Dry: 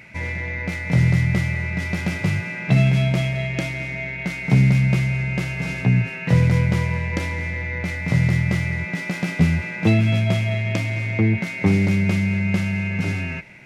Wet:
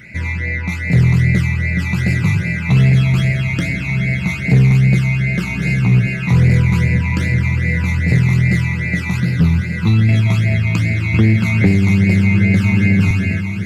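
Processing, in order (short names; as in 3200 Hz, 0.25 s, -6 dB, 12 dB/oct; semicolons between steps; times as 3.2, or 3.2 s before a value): 9.2–10.09 fixed phaser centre 2200 Hz, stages 6; on a send: diffused feedback echo 1.163 s, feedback 47%, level -8 dB; on the sum: hard clip -12 dBFS, distortion -19 dB; phaser stages 12, 2.5 Hz, lowest notch 510–1100 Hz; in parallel at -4.5 dB: soft clip -20 dBFS, distortion -10 dB; 11.14–13.11 on the sum: three-band squash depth 100%; gain +3.5 dB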